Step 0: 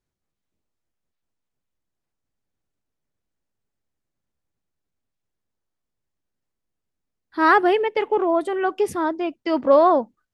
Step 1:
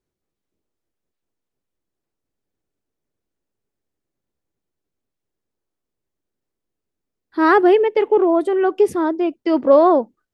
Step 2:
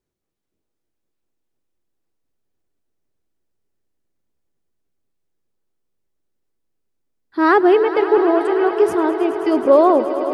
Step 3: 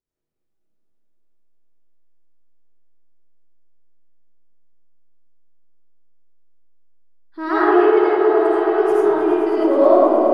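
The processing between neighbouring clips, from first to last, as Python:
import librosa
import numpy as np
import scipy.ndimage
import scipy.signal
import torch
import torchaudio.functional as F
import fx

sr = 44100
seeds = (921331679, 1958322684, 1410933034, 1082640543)

y1 = fx.peak_eq(x, sr, hz=380.0, db=8.0, octaves=1.2)
y1 = y1 * 10.0 ** (-1.0 / 20.0)
y2 = fx.echo_swell(y1, sr, ms=106, loudest=5, wet_db=-15.0)
y3 = fx.rev_freeverb(y2, sr, rt60_s=2.5, hf_ratio=0.3, predelay_ms=40, drr_db=-9.5)
y3 = y3 * 10.0 ** (-12.0 / 20.0)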